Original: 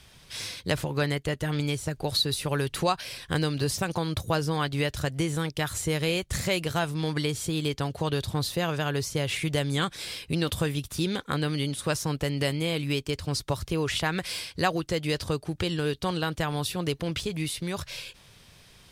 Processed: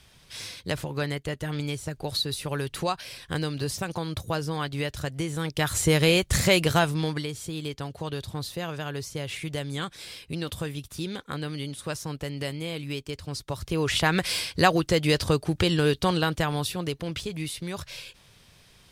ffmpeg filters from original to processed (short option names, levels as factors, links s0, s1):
-af "volume=7.08,afade=t=in:st=5.35:d=0.53:silence=0.354813,afade=t=out:st=6.72:d=0.54:silence=0.266073,afade=t=in:st=13.48:d=0.67:silence=0.298538,afade=t=out:st=15.97:d=0.94:silence=0.421697"